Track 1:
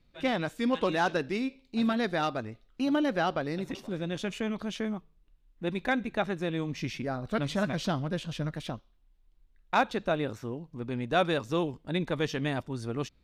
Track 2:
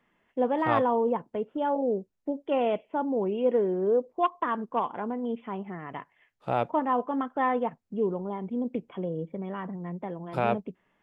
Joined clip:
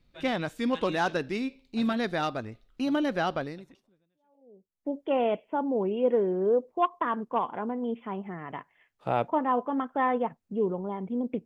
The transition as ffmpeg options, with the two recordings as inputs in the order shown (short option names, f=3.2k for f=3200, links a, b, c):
-filter_complex "[0:a]apad=whole_dur=11.45,atrim=end=11.45,atrim=end=4.91,asetpts=PTS-STARTPTS[a];[1:a]atrim=start=0.84:end=8.86,asetpts=PTS-STARTPTS[b];[a][b]acrossfade=d=1.48:c1=exp:c2=exp"